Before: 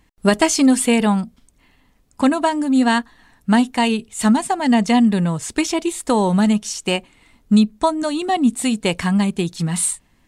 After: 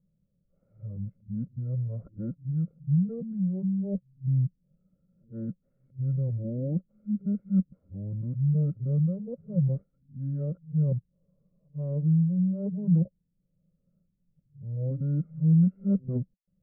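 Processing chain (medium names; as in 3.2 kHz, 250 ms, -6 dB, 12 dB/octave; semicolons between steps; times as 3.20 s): reverse the whole clip; cascade formant filter u; wide varispeed 0.618×; trim -3.5 dB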